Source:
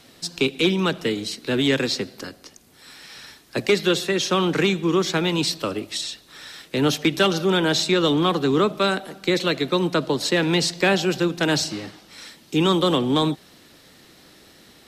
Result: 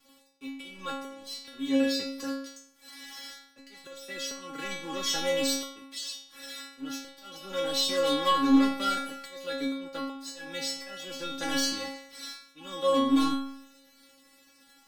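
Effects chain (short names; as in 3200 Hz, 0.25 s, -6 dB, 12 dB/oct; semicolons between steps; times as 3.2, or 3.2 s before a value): auto swell 0.76 s; sample leveller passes 3; metallic resonator 270 Hz, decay 0.76 s, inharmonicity 0.002; gain +6 dB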